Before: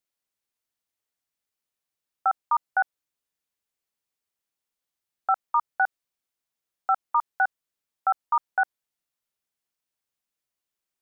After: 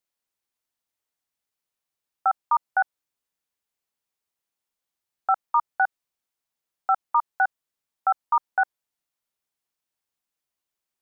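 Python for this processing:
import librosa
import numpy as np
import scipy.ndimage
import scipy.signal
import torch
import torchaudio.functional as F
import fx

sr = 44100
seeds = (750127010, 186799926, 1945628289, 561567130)

y = fx.peak_eq(x, sr, hz=900.0, db=2.5, octaves=0.77)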